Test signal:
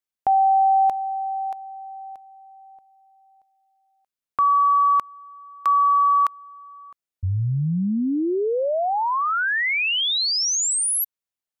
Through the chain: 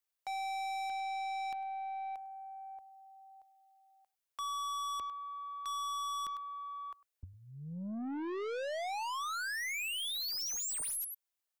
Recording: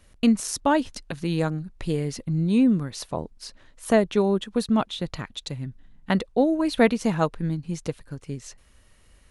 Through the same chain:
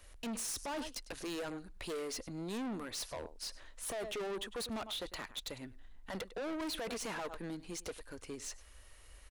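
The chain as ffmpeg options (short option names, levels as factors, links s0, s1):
-filter_complex "[0:a]acrossover=split=100[s0][s1];[s0]acompressor=threshold=0.00398:ratio=12:attack=48:release=282[s2];[s1]highpass=410[s3];[s2][s3]amix=inputs=2:normalize=0,aecho=1:1:101:0.075,alimiter=limit=0.1:level=0:latency=1:release=11,highshelf=f=10000:g=4,aeval=exprs='(tanh(70.8*val(0)+0.05)-tanh(0.05))/70.8':c=same"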